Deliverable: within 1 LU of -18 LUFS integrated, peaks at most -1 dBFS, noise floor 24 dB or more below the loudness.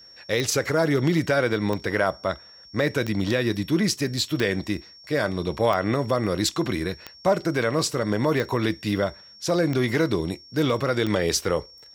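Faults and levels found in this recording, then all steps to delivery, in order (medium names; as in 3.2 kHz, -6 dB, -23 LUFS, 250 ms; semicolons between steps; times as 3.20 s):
clicks found 9; steady tone 5.5 kHz; tone level -46 dBFS; loudness -24.5 LUFS; peak level -8.5 dBFS; loudness target -18.0 LUFS
-> de-click; band-stop 5.5 kHz, Q 30; trim +6.5 dB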